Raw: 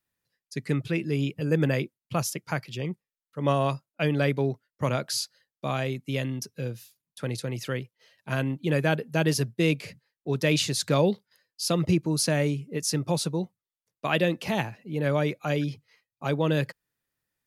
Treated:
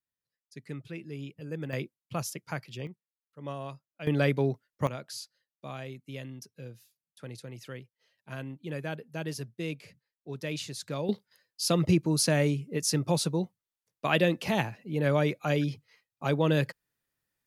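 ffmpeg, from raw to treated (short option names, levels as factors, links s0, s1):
-af "asetnsamples=n=441:p=0,asendcmd='1.73 volume volume -6dB;2.87 volume volume -14dB;4.07 volume volume -1dB;4.87 volume volume -11.5dB;11.09 volume volume -0.5dB',volume=0.224"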